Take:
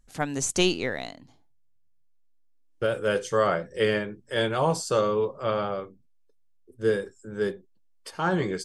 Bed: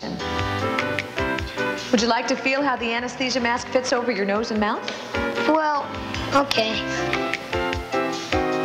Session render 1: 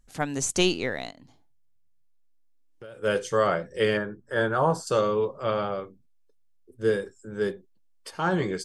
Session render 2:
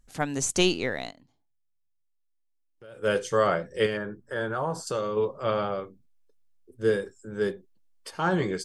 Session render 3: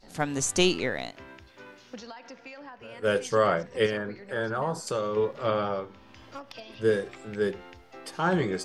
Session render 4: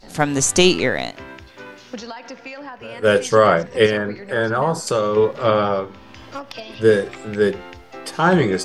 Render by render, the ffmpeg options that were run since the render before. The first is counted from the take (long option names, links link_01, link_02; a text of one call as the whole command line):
ffmpeg -i in.wav -filter_complex "[0:a]asplit=3[link_01][link_02][link_03];[link_01]afade=type=out:start_time=1.1:duration=0.02[link_04];[link_02]acompressor=threshold=-46dB:ratio=3:attack=3.2:release=140:knee=1:detection=peak,afade=type=in:start_time=1.1:duration=0.02,afade=type=out:start_time=3.02:duration=0.02[link_05];[link_03]afade=type=in:start_time=3.02:duration=0.02[link_06];[link_04][link_05][link_06]amix=inputs=3:normalize=0,asettb=1/sr,asplit=3[link_07][link_08][link_09];[link_07]atrim=end=3.974[link_10];[link_08]atrim=start=3.97:end=4.87,asetpts=PTS-STARTPTS,afade=type=in:duration=0.004:curve=qsin,afade=type=out:start_time=0.896:duration=0.004:curve=qsin,highshelf=frequency=1900:width_type=q:width=3:gain=-6.5[link_11];[link_09]atrim=start=4.866[link_12];[link_10][link_11]acrossfade=duration=0.004:curve1=hsin:curve2=qsin[link_13];[link_13][link_12]acrossfade=duration=0.004:curve1=qsin:curve2=hsin" out.wav
ffmpeg -i in.wav -filter_complex "[0:a]asettb=1/sr,asplit=3[link_01][link_02][link_03];[link_01]atrim=end=3.864[link_04];[link_02]atrim=start=3.86:end=5.17,asetpts=PTS-STARTPTS,afade=type=in:duration=0.004:curve=qsin,afade=type=out:start_time=1.306:duration=0.004:curve=qsin,acompressor=threshold=-29dB:ratio=2:attack=3.2:release=140:knee=1:detection=peak[link_05];[link_03]atrim=start=5.166[link_06];[link_04][link_05]acrossfade=duration=0.004:curve1=hsin:curve2=qsin[link_07];[link_07][link_06]acrossfade=duration=0.004:curve1=qsin:curve2=hsin,asplit=3[link_08][link_09][link_10];[link_08]atrim=end=1.28,asetpts=PTS-STARTPTS,afade=type=out:start_time=1.08:duration=0.2:silence=0.237137[link_11];[link_09]atrim=start=1.28:end=2.76,asetpts=PTS-STARTPTS,volume=-12.5dB[link_12];[link_10]atrim=start=2.76,asetpts=PTS-STARTPTS,afade=type=in:duration=0.2:silence=0.237137[link_13];[link_11][link_12][link_13]concat=n=3:v=0:a=1" out.wav
ffmpeg -i in.wav -i bed.wav -filter_complex "[1:a]volume=-23.5dB[link_01];[0:a][link_01]amix=inputs=2:normalize=0" out.wav
ffmpeg -i in.wav -af "volume=10dB,alimiter=limit=-2dB:level=0:latency=1" out.wav